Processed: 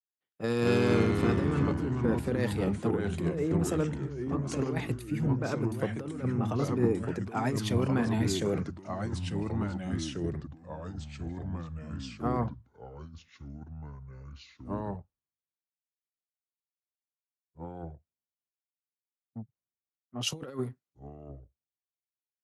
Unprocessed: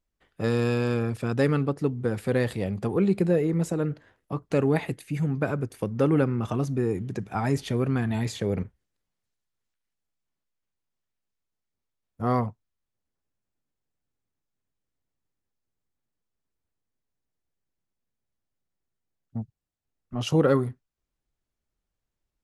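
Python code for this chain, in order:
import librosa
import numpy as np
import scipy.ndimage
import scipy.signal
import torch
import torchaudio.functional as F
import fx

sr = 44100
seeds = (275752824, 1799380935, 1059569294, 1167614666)

y = scipy.signal.sosfilt(scipy.signal.butter(2, 120.0, 'highpass', fs=sr, output='sos'), x)
y = fx.over_compress(y, sr, threshold_db=-25.0, ratio=-0.5)
y = fx.echo_pitch(y, sr, ms=147, semitones=-3, count=3, db_per_echo=-3.0)
y = fx.band_widen(y, sr, depth_pct=70)
y = F.gain(torch.from_numpy(y), -4.0).numpy()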